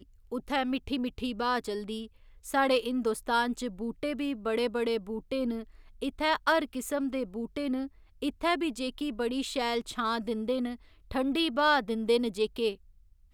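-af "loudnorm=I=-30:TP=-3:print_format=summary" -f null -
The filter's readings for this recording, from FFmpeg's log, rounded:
Input Integrated:    -30.4 LUFS
Input True Peak:     -12.8 dBTP
Input LRA:             2.1 LU
Input Threshold:     -40.7 LUFS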